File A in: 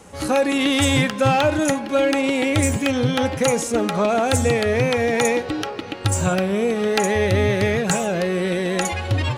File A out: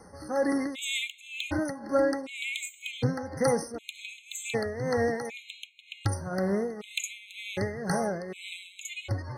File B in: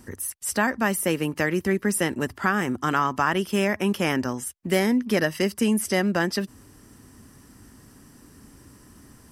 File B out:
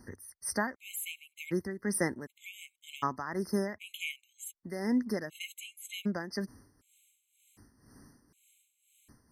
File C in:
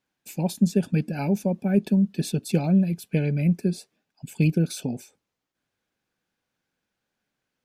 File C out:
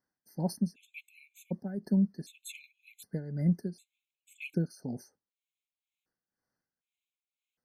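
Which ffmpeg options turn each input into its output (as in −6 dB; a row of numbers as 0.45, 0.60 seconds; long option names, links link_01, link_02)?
-af "tremolo=f=2:d=0.76,afftfilt=real='re*gt(sin(2*PI*0.66*pts/sr)*(1-2*mod(floor(b*sr/1024/2100),2)),0)':imag='im*gt(sin(2*PI*0.66*pts/sr)*(1-2*mod(floor(b*sr/1024/2100),2)),0)':win_size=1024:overlap=0.75,volume=-5dB"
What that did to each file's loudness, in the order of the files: −11.5, −11.5, −9.5 LU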